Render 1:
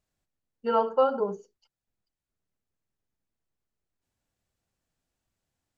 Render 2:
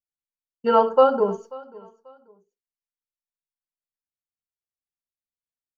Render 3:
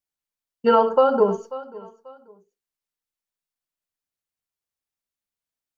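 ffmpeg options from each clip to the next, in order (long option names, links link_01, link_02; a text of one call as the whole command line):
ffmpeg -i in.wav -af "agate=range=-33dB:threshold=-51dB:ratio=3:detection=peak,aecho=1:1:538|1076:0.0794|0.0222,volume=7dB" out.wav
ffmpeg -i in.wav -af "alimiter=limit=-11dB:level=0:latency=1:release=163,volume=4.5dB" out.wav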